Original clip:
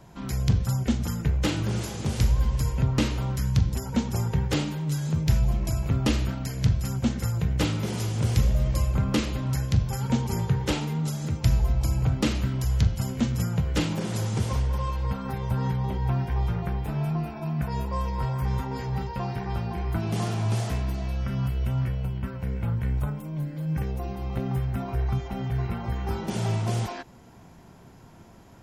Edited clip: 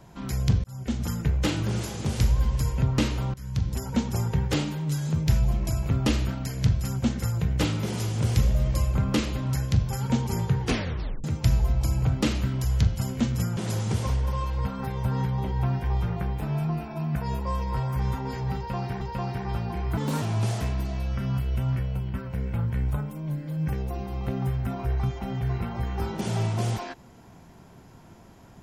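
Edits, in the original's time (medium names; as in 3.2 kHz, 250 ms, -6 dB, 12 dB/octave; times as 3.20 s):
0.64–1.07 s: fade in
3.34–3.81 s: fade in, from -20.5 dB
10.61 s: tape stop 0.63 s
13.57–14.03 s: delete
19.02–19.47 s: loop, 2 plays
19.98–20.31 s: speed 132%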